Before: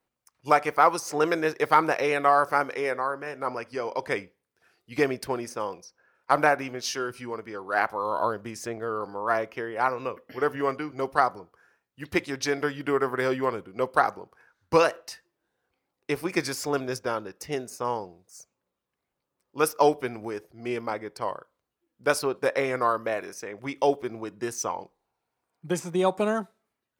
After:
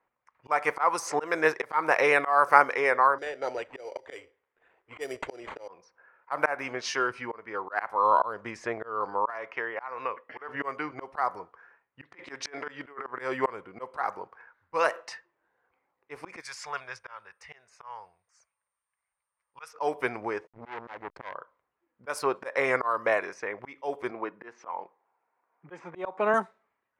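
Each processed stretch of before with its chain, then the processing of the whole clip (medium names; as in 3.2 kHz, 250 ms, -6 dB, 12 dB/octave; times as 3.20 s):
3.18–5.68 s: static phaser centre 450 Hz, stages 4 + sample-rate reducer 5.3 kHz
9.30–10.49 s: compression 3:1, threshold -27 dBFS + bass shelf 470 Hz -9 dB
12.12–13.07 s: Bessel high-pass 190 Hz + compressor with a negative ratio -30 dBFS, ratio -0.5
16.40–19.73 s: amplifier tone stack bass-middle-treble 10-0-10 + whistle 8.9 kHz -64 dBFS
20.47–21.34 s: tilt EQ -1.5 dB/octave + hysteresis with a dead band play -39.5 dBFS + transformer saturation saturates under 2.4 kHz
24.11–26.34 s: block-companded coder 7-bit + band-pass 210–2600 Hz
whole clip: level-controlled noise filter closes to 2.3 kHz, open at -20.5 dBFS; graphic EQ 500/1000/2000/8000 Hz +5/+11/+10/+6 dB; slow attack 263 ms; trim -5 dB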